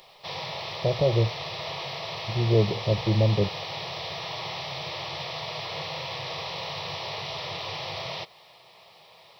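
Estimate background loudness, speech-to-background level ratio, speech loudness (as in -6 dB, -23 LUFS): -33.0 LUFS, 7.5 dB, -25.5 LUFS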